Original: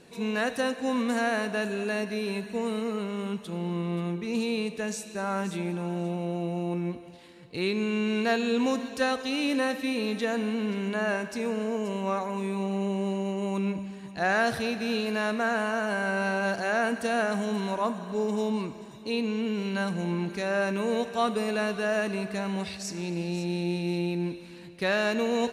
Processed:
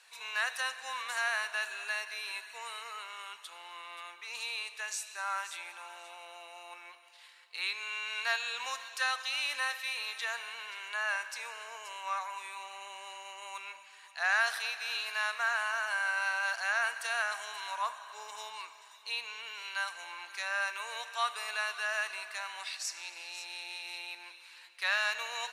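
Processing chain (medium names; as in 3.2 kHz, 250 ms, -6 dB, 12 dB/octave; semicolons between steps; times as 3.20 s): high-pass 1 kHz 24 dB/octave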